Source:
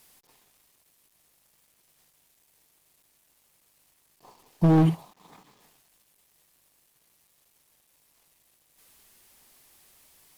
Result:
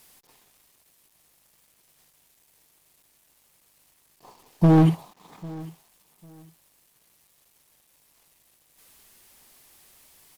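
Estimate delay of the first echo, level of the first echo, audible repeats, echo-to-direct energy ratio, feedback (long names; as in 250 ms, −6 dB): 799 ms, −21.0 dB, 2, −21.0 dB, 23%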